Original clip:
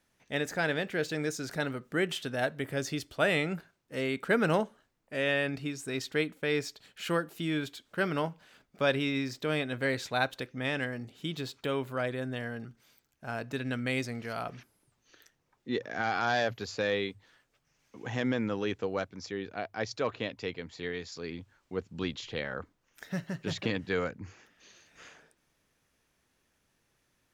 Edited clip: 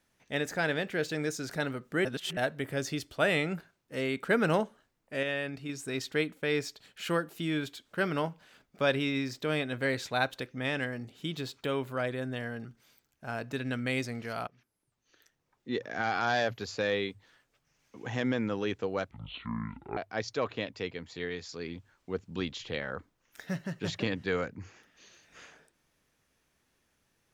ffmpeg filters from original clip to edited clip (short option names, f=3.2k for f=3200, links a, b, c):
-filter_complex "[0:a]asplit=8[a][b][c][d][e][f][g][h];[a]atrim=end=2.052[i];[b]atrim=start=2.048:end=2.372,asetpts=PTS-STARTPTS,areverse[j];[c]atrim=start=2.368:end=5.232[k];[d]atrim=start=5.228:end=5.692,asetpts=PTS-STARTPTS,volume=-4.5dB[l];[e]atrim=start=5.688:end=14.47,asetpts=PTS-STARTPTS,afade=t=out:st=8.778:d=0.004:c=hsin:silence=0.0749894[m];[f]atrim=start=14.47:end=19.114,asetpts=PTS-STARTPTS,afade=t=in:d=1.43:silence=0.0749894[n];[g]atrim=start=19.11:end=19.6,asetpts=PTS-STARTPTS,asetrate=25137,aresample=44100[o];[h]atrim=start=19.596[p];[i][j]acrossfade=d=0.004:c1=hsin:c2=hsin[q];[q][k]acrossfade=d=0.004:c1=hsin:c2=hsin[r];[r][l]acrossfade=d=0.004:c1=hsin:c2=hsin[s];[m][n]concat=n=2:v=0:a=1[t];[s][t]acrossfade=d=0.004:c1=hsin:c2=hsin[u];[u][o]acrossfade=d=0.004:c1=hsin:c2=hsin[v];[v][p]acrossfade=d=0.004:c1=hsin:c2=hsin"